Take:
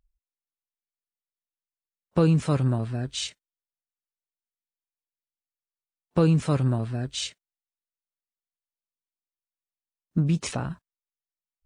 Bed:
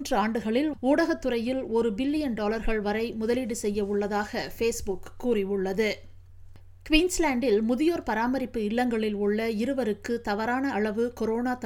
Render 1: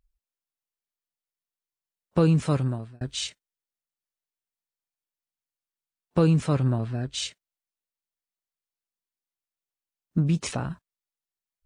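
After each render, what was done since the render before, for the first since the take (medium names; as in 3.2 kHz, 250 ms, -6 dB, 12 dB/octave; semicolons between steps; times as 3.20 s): 2.52–3.01 s: fade out linear; 6.46–7.14 s: distance through air 50 m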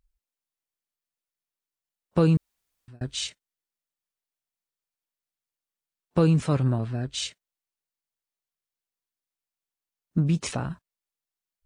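2.37–2.88 s: room tone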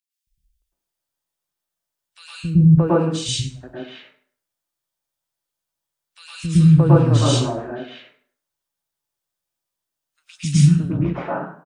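three bands offset in time highs, lows, mids 270/620 ms, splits 230/2100 Hz; plate-style reverb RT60 0.54 s, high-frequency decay 0.7×, pre-delay 95 ms, DRR -8.5 dB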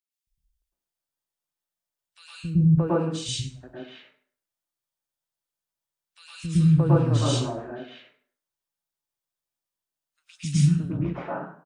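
trim -6.5 dB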